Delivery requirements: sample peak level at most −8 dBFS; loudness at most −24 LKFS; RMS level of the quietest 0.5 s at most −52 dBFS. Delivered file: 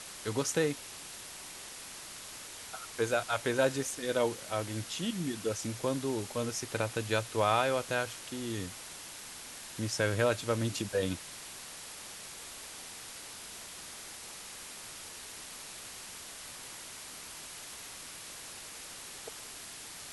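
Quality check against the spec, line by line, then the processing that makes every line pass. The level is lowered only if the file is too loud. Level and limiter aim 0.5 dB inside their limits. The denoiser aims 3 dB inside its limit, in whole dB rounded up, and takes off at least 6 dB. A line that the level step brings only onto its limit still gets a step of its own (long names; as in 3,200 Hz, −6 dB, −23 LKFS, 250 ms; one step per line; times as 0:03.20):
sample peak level −14.5 dBFS: in spec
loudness −36.0 LKFS: in spec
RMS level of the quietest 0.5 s −46 dBFS: out of spec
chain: broadband denoise 9 dB, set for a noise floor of −46 dBFS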